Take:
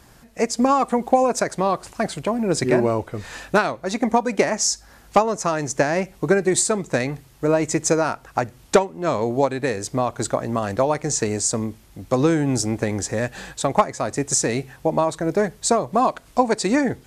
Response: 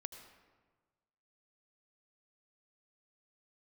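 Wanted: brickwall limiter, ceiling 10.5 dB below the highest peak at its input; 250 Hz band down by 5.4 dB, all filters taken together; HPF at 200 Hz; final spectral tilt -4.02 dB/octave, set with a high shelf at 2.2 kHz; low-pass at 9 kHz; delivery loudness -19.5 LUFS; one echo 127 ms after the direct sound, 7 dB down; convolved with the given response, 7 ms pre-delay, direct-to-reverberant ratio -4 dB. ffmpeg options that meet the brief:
-filter_complex "[0:a]highpass=200,lowpass=9000,equalizer=f=250:t=o:g=-5,highshelf=f=2200:g=-5,alimiter=limit=0.237:level=0:latency=1,aecho=1:1:127:0.447,asplit=2[s0][s1];[1:a]atrim=start_sample=2205,adelay=7[s2];[s1][s2]afir=irnorm=-1:irlink=0,volume=2.37[s3];[s0][s3]amix=inputs=2:normalize=0"

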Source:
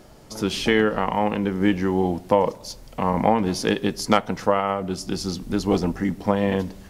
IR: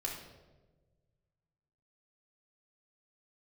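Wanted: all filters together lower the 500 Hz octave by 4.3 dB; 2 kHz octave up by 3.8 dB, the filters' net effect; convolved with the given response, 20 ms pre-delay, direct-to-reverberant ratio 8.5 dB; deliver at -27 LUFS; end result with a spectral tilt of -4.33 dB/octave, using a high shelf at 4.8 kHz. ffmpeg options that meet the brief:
-filter_complex "[0:a]equalizer=f=500:t=o:g=-5.5,equalizer=f=2000:t=o:g=3.5,highshelf=f=4800:g=8.5,asplit=2[s0][s1];[1:a]atrim=start_sample=2205,adelay=20[s2];[s1][s2]afir=irnorm=-1:irlink=0,volume=0.316[s3];[s0][s3]amix=inputs=2:normalize=0,volume=0.631"

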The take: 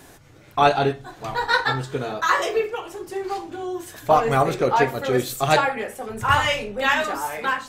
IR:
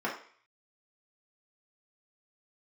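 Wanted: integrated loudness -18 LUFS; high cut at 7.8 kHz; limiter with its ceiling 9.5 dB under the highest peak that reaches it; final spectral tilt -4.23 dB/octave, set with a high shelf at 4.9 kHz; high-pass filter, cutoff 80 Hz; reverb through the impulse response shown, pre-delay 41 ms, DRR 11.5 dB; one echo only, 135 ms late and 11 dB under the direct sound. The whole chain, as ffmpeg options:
-filter_complex "[0:a]highpass=80,lowpass=7800,highshelf=f=4900:g=3.5,alimiter=limit=0.211:level=0:latency=1,aecho=1:1:135:0.282,asplit=2[s0][s1];[1:a]atrim=start_sample=2205,adelay=41[s2];[s1][s2]afir=irnorm=-1:irlink=0,volume=0.1[s3];[s0][s3]amix=inputs=2:normalize=0,volume=2.11"

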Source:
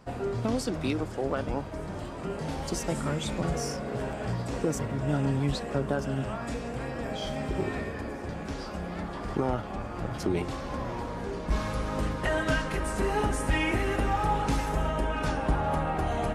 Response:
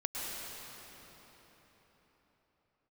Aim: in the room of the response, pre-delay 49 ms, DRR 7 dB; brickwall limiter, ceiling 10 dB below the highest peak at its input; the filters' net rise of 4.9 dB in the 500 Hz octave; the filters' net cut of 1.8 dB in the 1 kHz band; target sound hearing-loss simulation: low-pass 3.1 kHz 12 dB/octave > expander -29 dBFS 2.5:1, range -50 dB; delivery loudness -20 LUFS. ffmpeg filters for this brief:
-filter_complex "[0:a]equalizer=f=500:t=o:g=7.5,equalizer=f=1000:t=o:g=-5.5,alimiter=limit=0.0794:level=0:latency=1,asplit=2[s0][s1];[1:a]atrim=start_sample=2205,adelay=49[s2];[s1][s2]afir=irnorm=-1:irlink=0,volume=0.266[s3];[s0][s3]amix=inputs=2:normalize=0,lowpass=3100,agate=range=0.00316:threshold=0.0355:ratio=2.5,volume=3.76"

